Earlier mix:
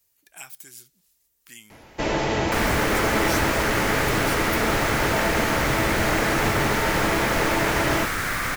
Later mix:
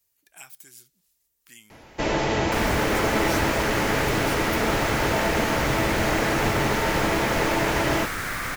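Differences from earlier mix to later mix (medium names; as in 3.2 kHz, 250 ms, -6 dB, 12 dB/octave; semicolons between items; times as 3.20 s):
speech -4.0 dB; second sound -3.5 dB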